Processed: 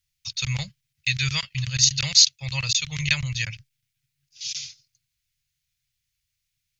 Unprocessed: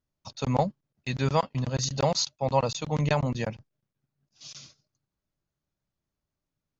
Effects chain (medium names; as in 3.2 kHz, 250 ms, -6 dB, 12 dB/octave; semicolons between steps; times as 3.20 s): FFT filter 130 Hz 0 dB, 250 Hz -27 dB, 830 Hz -23 dB, 2.2 kHz +11 dB; trim +2.5 dB